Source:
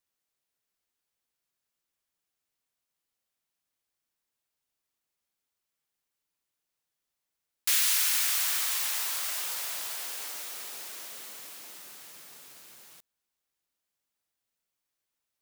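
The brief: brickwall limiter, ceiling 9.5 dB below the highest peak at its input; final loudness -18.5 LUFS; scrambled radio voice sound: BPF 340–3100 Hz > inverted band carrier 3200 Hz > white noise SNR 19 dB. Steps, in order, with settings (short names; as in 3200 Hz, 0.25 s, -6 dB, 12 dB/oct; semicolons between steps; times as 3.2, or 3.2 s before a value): limiter -21.5 dBFS; BPF 340–3100 Hz; inverted band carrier 3200 Hz; white noise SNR 19 dB; gain +27 dB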